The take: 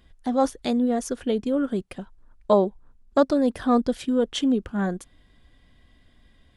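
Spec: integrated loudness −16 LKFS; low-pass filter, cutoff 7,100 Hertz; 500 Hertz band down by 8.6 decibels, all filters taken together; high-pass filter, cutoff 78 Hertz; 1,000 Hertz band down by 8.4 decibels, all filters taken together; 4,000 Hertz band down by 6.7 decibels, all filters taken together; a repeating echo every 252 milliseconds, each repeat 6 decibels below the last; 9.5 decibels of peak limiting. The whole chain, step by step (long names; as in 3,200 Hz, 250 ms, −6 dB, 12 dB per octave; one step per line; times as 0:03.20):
high-pass filter 78 Hz
low-pass filter 7,100 Hz
parametric band 500 Hz −8 dB
parametric band 1,000 Hz −8 dB
parametric band 4,000 Hz −8 dB
brickwall limiter −21.5 dBFS
repeating echo 252 ms, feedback 50%, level −6 dB
level +14.5 dB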